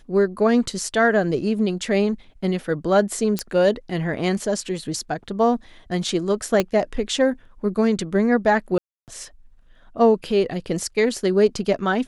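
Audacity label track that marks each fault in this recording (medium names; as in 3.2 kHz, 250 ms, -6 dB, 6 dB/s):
3.390000	3.390000	pop -8 dBFS
6.600000	6.600000	pop -5 dBFS
8.780000	9.080000	dropout 298 ms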